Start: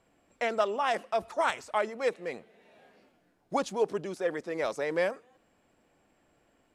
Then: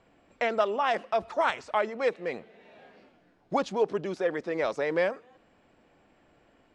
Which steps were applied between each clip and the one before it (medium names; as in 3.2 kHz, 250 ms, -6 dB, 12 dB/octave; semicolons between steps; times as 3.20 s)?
low-pass 4.7 kHz 12 dB/octave; in parallel at -1 dB: compression, threshold -36 dBFS, peak gain reduction 14 dB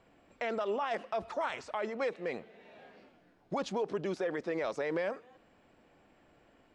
peak limiter -23.5 dBFS, peak gain reduction 11.5 dB; trim -1.5 dB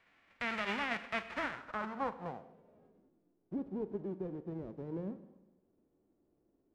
formants flattened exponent 0.1; Schroeder reverb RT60 1.1 s, combs from 33 ms, DRR 12.5 dB; low-pass sweep 2.1 kHz -> 370 Hz, 1.29–3.09 s; trim -3 dB